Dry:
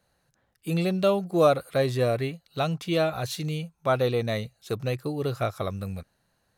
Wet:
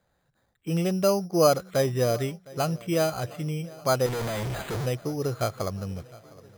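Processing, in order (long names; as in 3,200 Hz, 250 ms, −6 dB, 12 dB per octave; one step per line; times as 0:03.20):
0:04.06–0:04.86: sign of each sample alone
feedback echo with a long and a short gap by turns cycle 1,183 ms, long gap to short 1.5 to 1, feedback 42%, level −22 dB
bad sample-rate conversion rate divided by 8×, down filtered, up hold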